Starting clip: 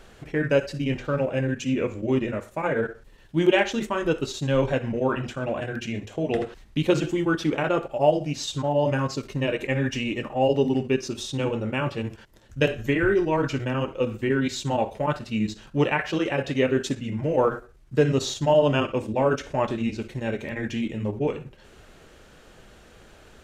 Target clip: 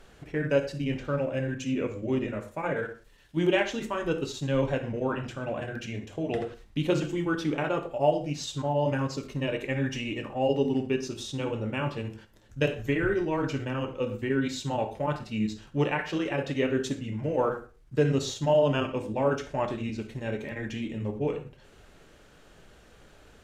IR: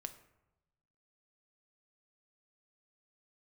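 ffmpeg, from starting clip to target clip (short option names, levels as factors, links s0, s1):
-filter_complex "[0:a]asettb=1/sr,asplit=3[s0][s1][s2];[s0]atrim=end=2.764[s3];[s1]atrim=start=2.76:end=3.37,asetpts=PTS-STARTPTS,afade=t=in:d=0.004:c=qsin,afade=t=out:st=0.606:d=0.004:c=qsin,tiltshelf=f=1200:g=-4.5[s4];[s2]atrim=start=3.366[s5];[s3][s4]acrossfade=d=0.004:c1=hsin:c2=qsin[s6];[s6][s5]acrossfade=d=0.004:c1=qsin:c2=hsin[s7];[1:a]atrim=start_sample=2205,atrim=end_sample=4410,asetrate=35280,aresample=44100[s8];[s7][s8]afir=irnorm=-1:irlink=0,volume=0.794"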